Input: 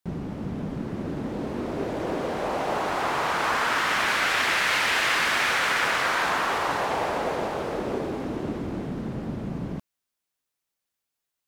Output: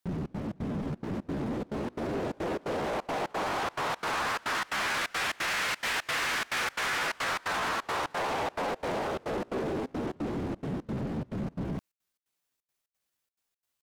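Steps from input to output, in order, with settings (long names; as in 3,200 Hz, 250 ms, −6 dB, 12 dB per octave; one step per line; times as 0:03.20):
tempo change 0.83×
in parallel at +0.5 dB: brickwall limiter −19 dBFS, peak gain reduction 8 dB
on the sum: soft clipping −22 dBFS, distortion −10 dB
gate pattern "xxx.xx.x" 175 BPM −24 dB
level −5 dB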